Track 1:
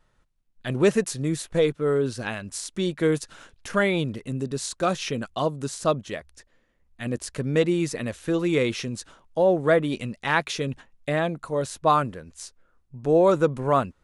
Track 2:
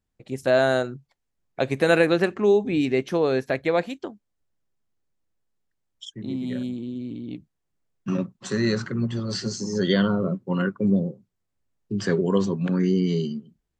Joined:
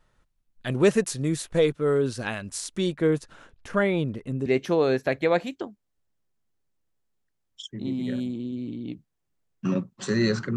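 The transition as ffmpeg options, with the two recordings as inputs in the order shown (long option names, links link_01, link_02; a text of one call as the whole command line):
ffmpeg -i cue0.wav -i cue1.wav -filter_complex "[0:a]asettb=1/sr,asplit=3[link_01][link_02][link_03];[link_01]atrim=end=2.954[link_04];[link_02]atrim=start=2.95:end=4.46,asetpts=PTS-STARTPTS,afade=type=in:duration=0.004:curve=qsin,afade=type=out:start_time=1.506:duration=0.004:curve=qsin,highshelf=frequency=2600:gain=-11[link_05];[link_03]atrim=start=4.456[link_06];[link_04][link_05]acrossfade=duration=0.004:curve1=hsin:curve2=qsin[link_07];[link_07][link_06]acrossfade=duration=0.004:curve1=qsin:curve2=hsin,apad=whole_dur=10.56,atrim=end=10.56,atrim=end=4.462[link_08];[1:a]atrim=start=2.888:end=8.99[link_09];[link_08][link_09]acrossfade=duration=0.004:curve1=hsin:curve2=hsin" out.wav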